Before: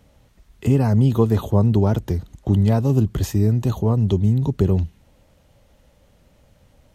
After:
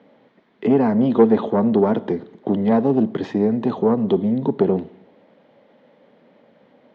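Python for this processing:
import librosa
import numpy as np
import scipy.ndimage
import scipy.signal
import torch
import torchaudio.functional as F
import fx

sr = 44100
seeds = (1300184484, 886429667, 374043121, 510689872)

y = 10.0 ** (-12.5 / 20.0) * np.tanh(x / 10.0 ** (-12.5 / 20.0))
y = fx.cabinet(y, sr, low_hz=210.0, low_slope=24, high_hz=3100.0, hz=(230.0, 440.0, 1300.0, 2700.0), db=(3, 4, -4, -8))
y = fx.rev_schroeder(y, sr, rt60_s=0.87, comb_ms=28, drr_db=17.5)
y = y * librosa.db_to_amplitude(6.5)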